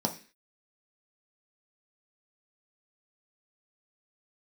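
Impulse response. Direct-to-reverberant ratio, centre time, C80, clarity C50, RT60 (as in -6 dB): 2.0 dB, 11 ms, 18.0 dB, 13.0 dB, no single decay rate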